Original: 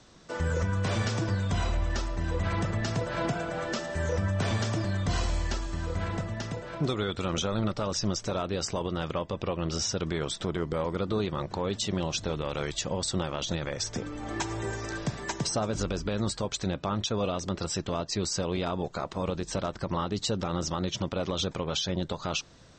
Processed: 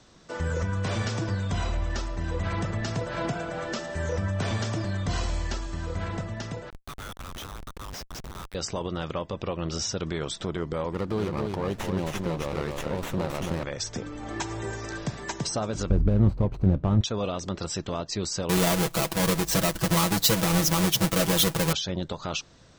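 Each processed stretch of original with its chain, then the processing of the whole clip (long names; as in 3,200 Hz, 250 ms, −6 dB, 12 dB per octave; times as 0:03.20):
0:06.70–0:08.55: Butterworth high-pass 930 Hz 48 dB per octave + comparator with hysteresis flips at −34 dBFS
0:10.92–0:13.64: single-tap delay 269 ms −4 dB + windowed peak hold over 9 samples
0:15.90–0:17.01: running median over 25 samples + RIAA equalisation playback
0:18.49–0:21.73: each half-wave held at its own peak + high-shelf EQ 4,700 Hz +9 dB + comb filter 6.1 ms, depth 76%
whole clip: no processing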